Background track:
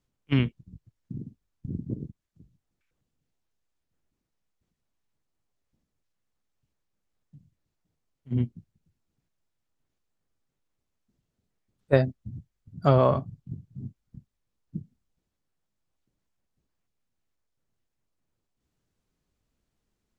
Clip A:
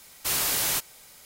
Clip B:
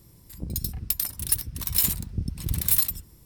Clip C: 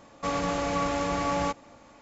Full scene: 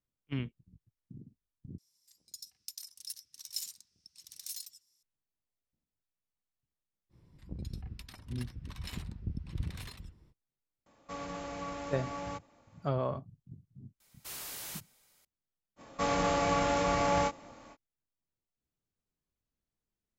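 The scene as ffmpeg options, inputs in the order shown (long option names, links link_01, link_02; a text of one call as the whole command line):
ffmpeg -i bed.wav -i cue0.wav -i cue1.wav -i cue2.wav -filter_complex "[2:a]asplit=2[link_01][link_02];[3:a]asplit=2[link_03][link_04];[0:a]volume=-12.5dB[link_05];[link_01]bandpass=frequency=5700:width_type=q:width=3.2:csg=0[link_06];[link_02]lowpass=3000[link_07];[link_04]asplit=2[link_08][link_09];[link_09]adelay=26,volume=-5dB[link_10];[link_08][link_10]amix=inputs=2:normalize=0[link_11];[link_05]asplit=2[link_12][link_13];[link_12]atrim=end=1.784[link_14];[link_06]atrim=end=3.25,asetpts=PTS-STARTPTS,volume=-5dB[link_15];[link_13]atrim=start=5.026[link_16];[link_07]atrim=end=3.25,asetpts=PTS-STARTPTS,volume=-8dB,afade=type=in:duration=0.05,afade=type=out:start_time=3.2:duration=0.05,adelay=7090[link_17];[link_03]atrim=end=2.01,asetpts=PTS-STARTPTS,volume=-12.5dB,afade=type=in:duration=0.004:curve=hsin,afade=type=out:start_time=2.006:duration=0.004:curve=hsin,adelay=10860[link_18];[1:a]atrim=end=1.25,asetpts=PTS-STARTPTS,volume=-17dB,afade=type=in:duration=0.004:curve=hsin,afade=type=out:start_time=1.246:duration=0.004:curve=hsin,adelay=14000[link_19];[link_11]atrim=end=2.01,asetpts=PTS-STARTPTS,volume=-1.5dB,afade=type=in:duration=0.05,afade=type=out:start_time=1.96:duration=0.05,adelay=15760[link_20];[link_14][link_15]acrossfade=duration=0.004:curve1=hsin:curve2=hsin[link_21];[link_21][link_16]acrossfade=duration=0.004:curve1=hsin:curve2=hsin[link_22];[link_22][link_17][link_18][link_19][link_20]amix=inputs=5:normalize=0" out.wav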